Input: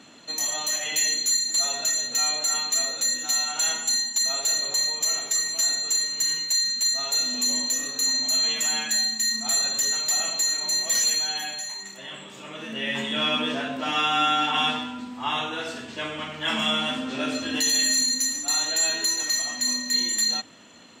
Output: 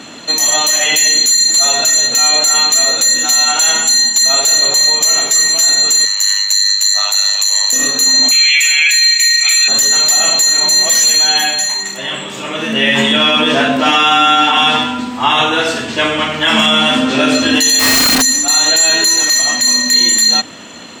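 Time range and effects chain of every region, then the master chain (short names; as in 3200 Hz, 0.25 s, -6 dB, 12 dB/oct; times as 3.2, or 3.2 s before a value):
6.05–7.73 HPF 740 Hz 24 dB/oct + ring modulator 50 Hz
8.31–9.68 resonant high-pass 2300 Hz, resonance Q 15 + notch 5300 Hz, Q 10
17.79–18.22 bell 10000 Hz -10 dB 1.7 oct + Schmitt trigger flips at -33 dBFS
whole clip: notches 50/100/150/200/250 Hz; maximiser +18.5 dB; gain -1 dB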